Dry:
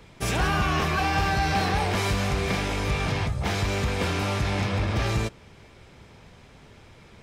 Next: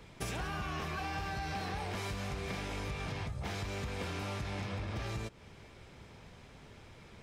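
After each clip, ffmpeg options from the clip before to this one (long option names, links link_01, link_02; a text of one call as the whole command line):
ffmpeg -i in.wav -af "acompressor=threshold=-32dB:ratio=6,volume=-4dB" out.wav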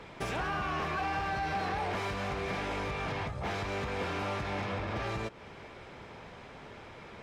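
ffmpeg -i in.wav -filter_complex "[0:a]asplit=2[link_01][link_02];[link_02]highpass=frequency=720:poles=1,volume=15dB,asoftclip=type=tanh:threshold=-26.5dB[link_03];[link_01][link_03]amix=inputs=2:normalize=0,lowpass=frequency=1200:poles=1,volume=-6dB,volume=4dB" out.wav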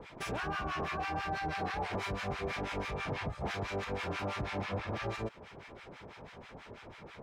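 ffmpeg -i in.wav -filter_complex "[0:a]acrossover=split=990[link_01][link_02];[link_01]aeval=exprs='val(0)*(1-1/2+1/2*cos(2*PI*6.1*n/s))':channel_layout=same[link_03];[link_02]aeval=exprs='val(0)*(1-1/2-1/2*cos(2*PI*6.1*n/s))':channel_layout=same[link_04];[link_03][link_04]amix=inputs=2:normalize=0,volume=2.5dB" out.wav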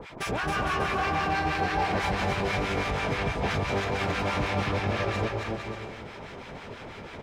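ffmpeg -i in.wav -af "aecho=1:1:270|459|591.3|683.9|748.7:0.631|0.398|0.251|0.158|0.1,volume=7dB" out.wav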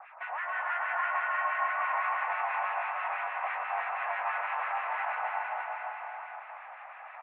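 ffmpeg -i in.wav -af "aecho=1:1:340|612|829.6|1004|1143:0.631|0.398|0.251|0.158|0.1,highpass=frequency=390:width_type=q:width=0.5412,highpass=frequency=390:width_type=q:width=1.307,lowpass=frequency=2000:width_type=q:width=0.5176,lowpass=frequency=2000:width_type=q:width=0.7071,lowpass=frequency=2000:width_type=q:width=1.932,afreqshift=300,volume=-4dB" out.wav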